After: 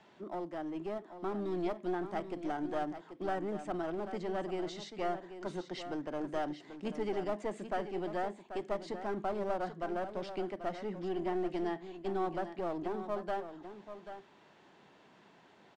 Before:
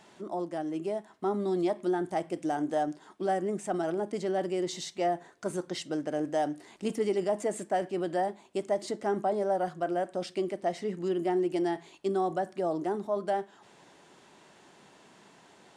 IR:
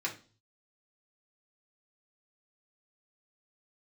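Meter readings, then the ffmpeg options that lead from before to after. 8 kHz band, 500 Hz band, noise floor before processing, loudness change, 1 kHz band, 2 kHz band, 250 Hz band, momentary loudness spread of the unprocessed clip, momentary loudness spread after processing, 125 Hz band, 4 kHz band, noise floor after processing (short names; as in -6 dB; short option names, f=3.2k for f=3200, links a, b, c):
under -10 dB, -7.0 dB, -58 dBFS, -6.5 dB, -6.0 dB, -3.5 dB, -6.0 dB, 6 LU, 6 LU, -5.0 dB, -6.5 dB, -62 dBFS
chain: -filter_complex "[0:a]lowpass=3.9k,acrossover=split=260|1000[a][b][c];[b]aeval=exprs='clip(val(0),-1,0.0112)':c=same[d];[a][d][c]amix=inputs=3:normalize=0,aecho=1:1:787:0.299,volume=-4.5dB"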